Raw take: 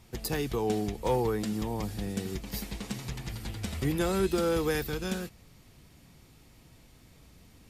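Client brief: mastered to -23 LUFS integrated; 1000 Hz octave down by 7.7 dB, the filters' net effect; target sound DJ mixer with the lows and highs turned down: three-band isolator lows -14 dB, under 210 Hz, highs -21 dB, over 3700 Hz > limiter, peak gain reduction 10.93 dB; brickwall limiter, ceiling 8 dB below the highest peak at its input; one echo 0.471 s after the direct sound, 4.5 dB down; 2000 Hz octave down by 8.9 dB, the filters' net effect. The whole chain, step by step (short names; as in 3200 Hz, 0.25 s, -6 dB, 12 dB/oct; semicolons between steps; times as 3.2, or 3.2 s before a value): bell 1000 Hz -8.5 dB; bell 2000 Hz -8 dB; limiter -26.5 dBFS; three-band isolator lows -14 dB, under 210 Hz, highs -21 dB, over 3700 Hz; echo 0.471 s -4.5 dB; gain +21 dB; limiter -14 dBFS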